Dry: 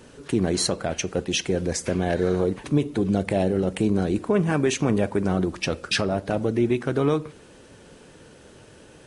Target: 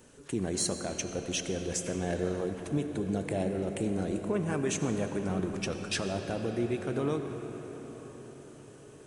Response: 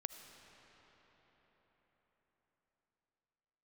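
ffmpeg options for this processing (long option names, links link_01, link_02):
-filter_complex "[0:a]aexciter=amount=1.9:drive=7.1:freq=6300[link_01];[1:a]atrim=start_sample=2205,asetrate=37485,aresample=44100[link_02];[link_01][link_02]afir=irnorm=-1:irlink=0,volume=-7dB"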